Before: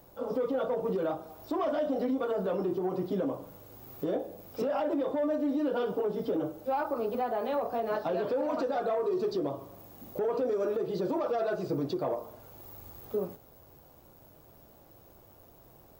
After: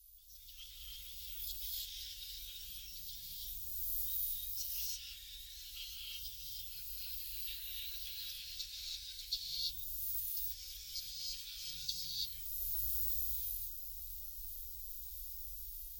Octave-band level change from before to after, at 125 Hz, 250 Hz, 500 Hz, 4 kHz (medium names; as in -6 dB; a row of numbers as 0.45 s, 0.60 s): -14.0 dB, under -40 dB, under -40 dB, +10.5 dB